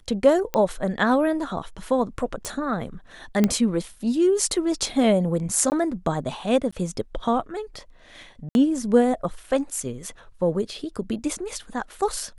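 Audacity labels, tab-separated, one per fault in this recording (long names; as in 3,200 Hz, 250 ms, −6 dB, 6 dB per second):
0.540000	0.540000	click −10 dBFS
2.450000	2.450000	click
3.440000	3.440000	click −7 dBFS
5.700000	5.720000	drop-out 19 ms
6.710000	6.720000	drop-out 15 ms
8.490000	8.550000	drop-out 61 ms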